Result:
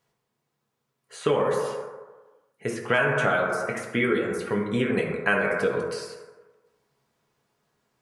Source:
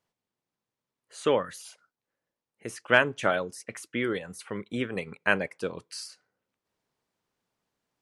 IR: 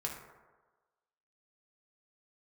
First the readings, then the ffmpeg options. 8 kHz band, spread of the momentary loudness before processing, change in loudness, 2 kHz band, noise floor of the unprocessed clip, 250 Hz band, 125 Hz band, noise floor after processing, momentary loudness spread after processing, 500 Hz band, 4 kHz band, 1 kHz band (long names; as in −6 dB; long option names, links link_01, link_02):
0.0 dB, 18 LU, +3.0 dB, +2.5 dB, below −85 dBFS, +5.5 dB, +7.5 dB, −79 dBFS, 13 LU, +5.0 dB, −0.5 dB, +4.0 dB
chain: -filter_complex "[1:a]atrim=start_sample=2205[link_01];[0:a][link_01]afir=irnorm=-1:irlink=0,asplit=2[link_02][link_03];[link_03]alimiter=limit=-18dB:level=0:latency=1,volume=-1dB[link_04];[link_02][link_04]amix=inputs=2:normalize=0,acrossover=split=3500|7100[link_05][link_06][link_07];[link_05]acompressor=threshold=-22dB:ratio=4[link_08];[link_06]acompressor=threshold=-54dB:ratio=4[link_09];[link_07]acompressor=threshold=-51dB:ratio=4[link_10];[link_08][link_09][link_10]amix=inputs=3:normalize=0,volume=2.5dB"